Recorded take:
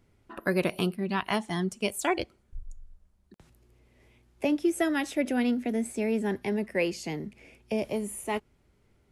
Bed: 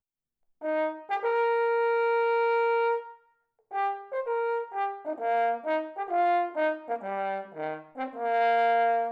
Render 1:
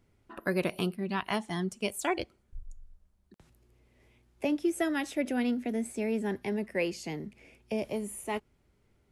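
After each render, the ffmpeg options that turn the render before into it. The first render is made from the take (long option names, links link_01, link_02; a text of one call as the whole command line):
ffmpeg -i in.wav -af "volume=-3dB" out.wav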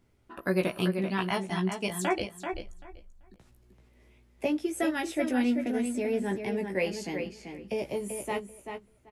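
ffmpeg -i in.wav -filter_complex "[0:a]asplit=2[link_01][link_02];[link_02]adelay=16,volume=-4.5dB[link_03];[link_01][link_03]amix=inputs=2:normalize=0,asplit=2[link_04][link_05];[link_05]adelay=387,lowpass=frequency=4400:poles=1,volume=-6.5dB,asplit=2[link_06][link_07];[link_07]adelay=387,lowpass=frequency=4400:poles=1,volume=0.17,asplit=2[link_08][link_09];[link_09]adelay=387,lowpass=frequency=4400:poles=1,volume=0.17[link_10];[link_04][link_06][link_08][link_10]amix=inputs=4:normalize=0" out.wav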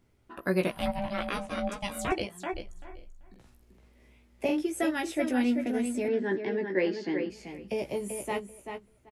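ffmpeg -i in.wav -filter_complex "[0:a]asettb=1/sr,asplit=3[link_01][link_02][link_03];[link_01]atrim=end=0.714[link_04];[link_02]atrim=start=0.71:end=2.12,asetpts=PTS-STARTPTS,afade=type=in:duration=0.004:curve=qsin,afade=type=out:start_time=1.406:duration=0.004:curve=qsin,aeval=exprs='val(0)*sin(2*PI*400*n/s)':channel_layout=same[link_05];[link_03]atrim=start=2.116[link_06];[link_04][link_05]acrossfade=duration=0.004:curve1=hsin:curve2=qsin[link_07];[link_07][link_06]acrossfade=duration=0.004:curve1=qsin:curve2=hsin,asplit=3[link_08][link_09][link_10];[link_08]afade=type=out:start_time=2.75:duration=0.02[link_11];[link_09]asplit=2[link_12][link_13];[link_13]adelay=46,volume=-4dB[link_14];[link_12][link_14]amix=inputs=2:normalize=0,afade=type=in:start_time=2.75:duration=0.02,afade=type=out:start_time=4.62:duration=0.02[link_15];[link_10]afade=type=in:start_time=4.62:duration=0.02[link_16];[link_11][link_15][link_16]amix=inputs=3:normalize=0,asettb=1/sr,asplit=3[link_17][link_18][link_19];[link_17]atrim=end=6.084[link_20];[link_18]atrim=start=6.08:end=7.3,asetpts=PTS-STARTPTS,afade=type=in:duration=0.004:curve=qsin,afade=type=out:start_time=1.216:duration=0.004:curve=qsin,highpass=frequency=150:width=0.5412,highpass=frequency=150:width=1.3066,equalizer=frequency=200:width_type=q:width=4:gain=-4,equalizer=frequency=340:width_type=q:width=4:gain=10,equalizer=frequency=720:width_type=q:width=4:gain=-5,equalizer=frequency=1700:width_type=q:width=4:gain=8,equalizer=frequency=2500:width_type=q:width=4:gain=-7,lowpass=frequency=4600:width=0.5412,lowpass=frequency=4600:width=1.3066[link_21];[link_19]atrim=start=7.296[link_22];[link_20][link_21]acrossfade=duration=0.004:curve1=hsin:curve2=qsin[link_23];[link_23][link_22]acrossfade=duration=0.004:curve1=qsin:curve2=hsin" out.wav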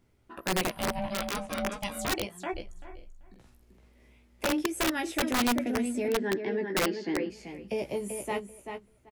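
ffmpeg -i in.wav -af "aeval=exprs='(mod(10.6*val(0)+1,2)-1)/10.6':channel_layout=same" out.wav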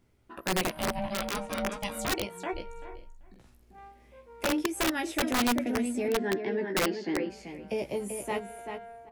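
ffmpeg -i in.wav -i bed.wav -filter_complex "[1:a]volume=-22dB[link_01];[0:a][link_01]amix=inputs=2:normalize=0" out.wav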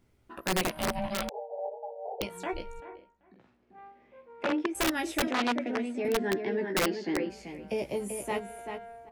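ffmpeg -i in.wav -filter_complex "[0:a]asettb=1/sr,asplit=3[link_01][link_02][link_03];[link_01]atrim=end=1.294[link_04];[link_02]atrim=start=1.29:end=2.21,asetpts=PTS-STARTPTS,afade=type=in:duration=0.004:curve=qsin,afade=type=out:start_time=0.916:duration=0.004:curve=qsin,asuperpass=centerf=610:order=20:qfactor=1.3[link_05];[link_03]atrim=start=2.206[link_06];[link_04][link_05]acrossfade=duration=0.004:curve1=hsin:curve2=qsin[link_07];[link_07][link_06]acrossfade=duration=0.004:curve1=qsin:curve2=hsin,asettb=1/sr,asplit=3[link_08][link_09][link_10];[link_08]atrim=end=2.804[link_11];[link_09]atrim=start=2.8:end=4.75,asetpts=PTS-STARTPTS,afade=type=in:duration=0.004:curve=qsin,afade=type=out:start_time=1.946:duration=0.004:curve=qsin,highpass=180,lowpass=2500[link_12];[link_10]atrim=start=4.746[link_13];[link_11][link_12]acrossfade=duration=0.004:curve1=hsin:curve2=qsin[link_14];[link_14][link_13]acrossfade=duration=0.004:curve1=qsin:curve2=hsin,asettb=1/sr,asplit=3[link_15][link_16][link_17];[link_15]atrim=end=5.274[link_18];[link_16]atrim=start=5.27:end=6.05,asetpts=PTS-STARTPTS,afade=type=in:duration=0.004:curve=qsin,afade=type=out:start_time=0.776:duration=0.004:curve=qsin,highpass=260,lowpass=3800[link_19];[link_17]atrim=start=6.046[link_20];[link_18][link_19]acrossfade=duration=0.004:curve1=hsin:curve2=qsin[link_21];[link_21][link_20]acrossfade=duration=0.004:curve1=qsin:curve2=hsin" out.wav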